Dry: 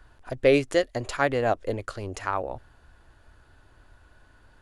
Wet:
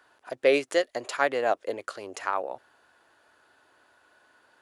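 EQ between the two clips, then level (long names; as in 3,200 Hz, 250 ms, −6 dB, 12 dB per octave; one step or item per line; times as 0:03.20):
high-pass filter 400 Hz 12 dB per octave
0.0 dB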